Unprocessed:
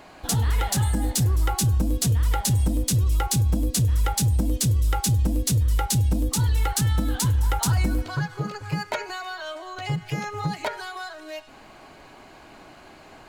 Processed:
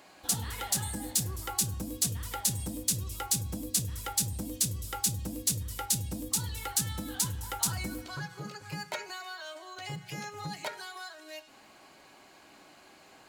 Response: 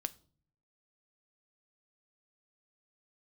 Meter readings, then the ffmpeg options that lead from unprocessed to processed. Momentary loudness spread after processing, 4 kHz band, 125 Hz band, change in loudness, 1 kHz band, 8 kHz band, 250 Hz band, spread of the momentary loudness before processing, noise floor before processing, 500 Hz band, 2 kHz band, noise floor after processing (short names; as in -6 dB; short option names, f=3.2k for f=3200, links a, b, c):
11 LU, -4.0 dB, -15.5 dB, -8.0 dB, -9.5 dB, -1.5 dB, -11.0 dB, 11 LU, -48 dBFS, -10.0 dB, -7.5 dB, -57 dBFS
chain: -filter_complex "[0:a]highpass=f=140:p=1,highshelf=f=3.3k:g=9.5[a];[1:a]atrim=start_sample=2205,asetrate=66150,aresample=44100[b];[a][b]afir=irnorm=-1:irlink=0,volume=-5.5dB"